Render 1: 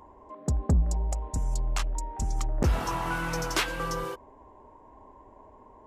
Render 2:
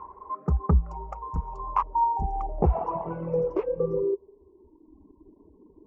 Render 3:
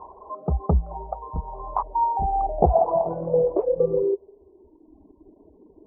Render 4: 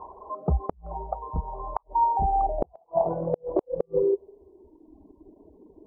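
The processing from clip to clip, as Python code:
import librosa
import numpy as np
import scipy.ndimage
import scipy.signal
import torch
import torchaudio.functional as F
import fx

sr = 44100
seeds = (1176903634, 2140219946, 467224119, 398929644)

y1 = fx.filter_sweep_lowpass(x, sr, from_hz=1300.0, to_hz=300.0, start_s=1.2, end_s=5.01, q=6.4)
y1 = fx.ripple_eq(y1, sr, per_octave=0.78, db=10)
y1 = fx.dereverb_blind(y1, sr, rt60_s=1.7)
y2 = fx.lowpass_res(y1, sr, hz=690.0, q=5.1)
y3 = fx.gate_flip(y2, sr, shuts_db=-11.0, range_db=-42)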